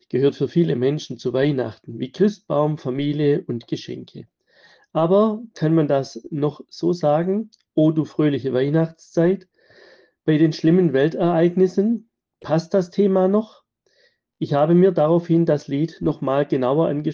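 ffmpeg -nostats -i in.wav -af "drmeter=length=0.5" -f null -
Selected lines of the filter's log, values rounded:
Channel 1: DR: 8.3
Overall DR: 8.3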